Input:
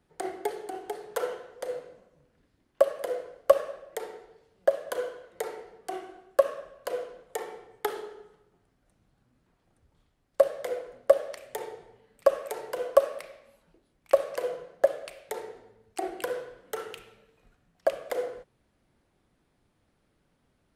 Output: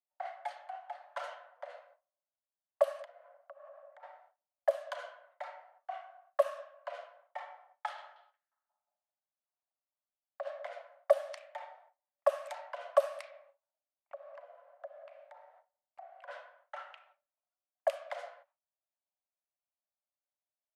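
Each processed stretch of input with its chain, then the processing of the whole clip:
0:03.02–0:04.03: high-shelf EQ 4,900 Hz −11.5 dB + downward compressor 8 to 1, threshold −41 dBFS
0:07.98–0:10.45: parametric band 5,300 Hz +5.5 dB 2.9 octaves + downward compressor 8 to 1, threshold −28 dBFS + echo through a band-pass that steps 178 ms, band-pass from 3,800 Hz, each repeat −0.7 octaves, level −3 dB
0:13.30–0:16.28: high-pass filter 98 Hz 24 dB per octave + parametric band 260 Hz +9.5 dB 1.9 octaves + downward compressor 3 to 1, threshold −42 dBFS
whole clip: low-pass that shuts in the quiet parts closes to 980 Hz, open at −22.5 dBFS; Chebyshev high-pass filter 570 Hz, order 8; noise gate with hold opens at −49 dBFS; level −3 dB

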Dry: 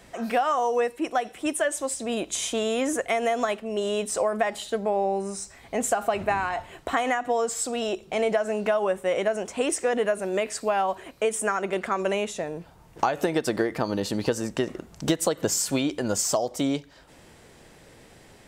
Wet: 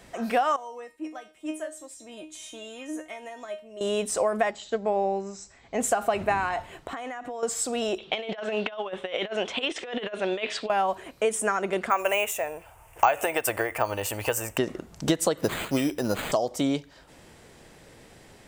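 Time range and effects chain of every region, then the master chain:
0:00.56–0:03.81: downward expander −44 dBFS + notch filter 1,500 Hz, Q 19 + tuned comb filter 310 Hz, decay 0.29 s, mix 90%
0:04.51–0:05.79: linear-phase brick-wall low-pass 8,100 Hz + expander for the loud parts, over −34 dBFS
0:06.78–0:07.43: high-shelf EQ 7,700 Hz −6 dB + downward compressor 10 to 1, threshold −31 dBFS
0:07.98–0:10.70: low-shelf EQ 210 Hz −11.5 dB + compressor whose output falls as the input rises −30 dBFS, ratio −0.5 + low-pass with resonance 3,400 Hz, resonance Q 4.8
0:11.90–0:14.58: drawn EQ curve 110 Hz 0 dB, 170 Hz −18 dB, 250 Hz −13 dB, 410 Hz −6 dB, 660 Hz +4 dB, 1,800 Hz +3 dB, 2,700 Hz +9 dB, 4,000 Hz −10 dB, 9,700 Hz +14 dB, 15,000 Hz −19 dB + bad sample-rate conversion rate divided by 2×, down none, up hold
0:15.41–0:16.32: high-shelf EQ 5,300 Hz −10.5 dB + bad sample-rate conversion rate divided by 8×, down none, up hold
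whole clip: no processing

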